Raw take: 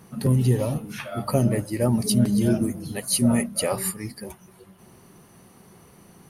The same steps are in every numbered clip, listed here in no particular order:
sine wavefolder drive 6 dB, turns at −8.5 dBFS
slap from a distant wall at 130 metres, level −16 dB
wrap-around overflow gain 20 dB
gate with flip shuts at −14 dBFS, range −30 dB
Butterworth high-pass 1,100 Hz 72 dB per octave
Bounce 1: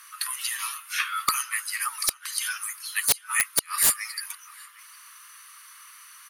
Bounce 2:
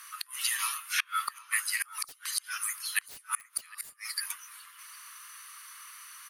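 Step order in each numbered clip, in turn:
Butterworth high-pass, then gate with flip, then slap from a distant wall, then wrap-around overflow, then sine wavefolder
Butterworth high-pass, then wrap-around overflow, then sine wavefolder, then gate with flip, then slap from a distant wall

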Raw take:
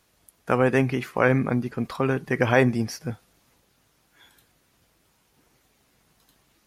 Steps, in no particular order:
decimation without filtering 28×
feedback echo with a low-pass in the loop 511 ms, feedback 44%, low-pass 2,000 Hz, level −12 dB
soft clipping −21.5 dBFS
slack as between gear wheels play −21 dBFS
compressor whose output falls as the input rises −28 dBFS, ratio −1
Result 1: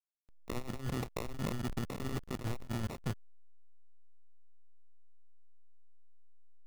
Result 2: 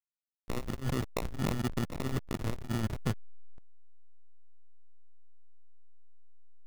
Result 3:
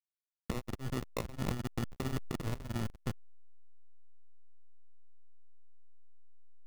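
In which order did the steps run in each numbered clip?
compressor whose output falls as the input rises, then feedback echo with a low-pass in the loop, then soft clipping, then slack as between gear wheels, then decimation without filtering
decimation without filtering, then compressor whose output falls as the input rises, then feedback echo with a low-pass in the loop, then slack as between gear wheels, then soft clipping
soft clipping, then compressor whose output falls as the input rises, then feedback echo with a low-pass in the loop, then decimation without filtering, then slack as between gear wheels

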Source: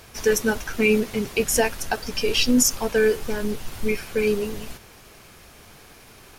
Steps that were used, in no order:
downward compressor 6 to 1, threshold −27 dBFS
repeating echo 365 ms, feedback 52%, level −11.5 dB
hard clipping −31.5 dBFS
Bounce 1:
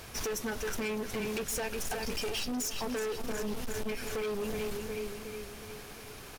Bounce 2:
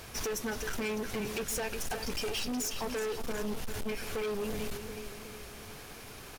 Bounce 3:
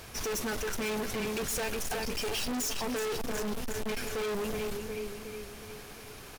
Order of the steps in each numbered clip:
repeating echo, then downward compressor, then hard clipping
downward compressor, then repeating echo, then hard clipping
repeating echo, then hard clipping, then downward compressor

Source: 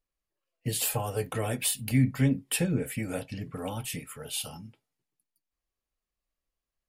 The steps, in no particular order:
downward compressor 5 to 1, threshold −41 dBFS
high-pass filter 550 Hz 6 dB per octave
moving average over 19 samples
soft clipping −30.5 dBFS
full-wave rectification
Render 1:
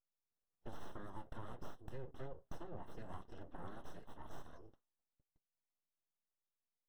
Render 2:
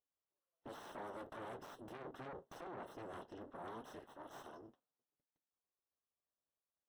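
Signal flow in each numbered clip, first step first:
high-pass filter, then full-wave rectification, then moving average, then downward compressor, then soft clipping
full-wave rectification, then moving average, then soft clipping, then high-pass filter, then downward compressor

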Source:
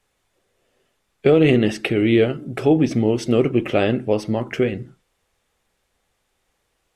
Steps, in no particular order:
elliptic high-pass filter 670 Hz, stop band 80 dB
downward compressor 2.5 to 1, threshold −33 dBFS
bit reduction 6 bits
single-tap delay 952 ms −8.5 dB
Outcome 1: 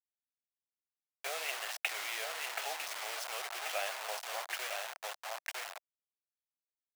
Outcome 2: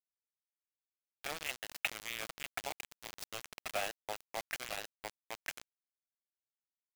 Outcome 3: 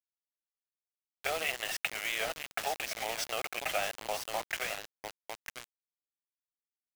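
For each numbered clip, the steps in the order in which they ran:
single-tap delay, then downward compressor, then bit reduction, then elliptic high-pass filter
single-tap delay, then downward compressor, then elliptic high-pass filter, then bit reduction
elliptic high-pass filter, then downward compressor, then single-tap delay, then bit reduction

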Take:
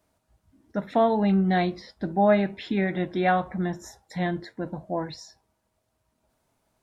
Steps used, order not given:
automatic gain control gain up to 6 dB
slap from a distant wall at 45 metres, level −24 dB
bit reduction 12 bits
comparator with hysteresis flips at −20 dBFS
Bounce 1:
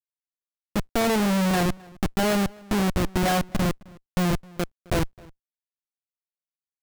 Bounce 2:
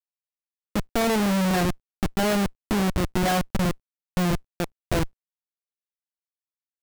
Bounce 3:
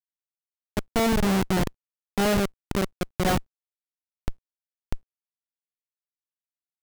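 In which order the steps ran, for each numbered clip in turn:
automatic gain control, then comparator with hysteresis, then bit reduction, then slap from a distant wall
slap from a distant wall, then automatic gain control, then comparator with hysteresis, then bit reduction
slap from a distant wall, then comparator with hysteresis, then automatic gain control, then bit reduction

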